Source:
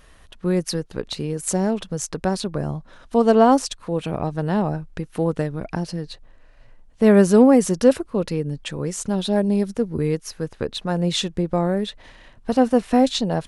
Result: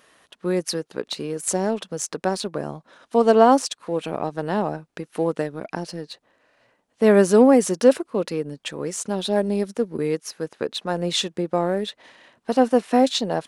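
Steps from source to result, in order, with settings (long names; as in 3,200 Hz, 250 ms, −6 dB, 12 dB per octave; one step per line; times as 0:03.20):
high-pass filter 260 Hz 12 dB per octave
in parallel at −11.5 dB: dead-zone distortion −36.5 dBFS
on the sum: level −1 dB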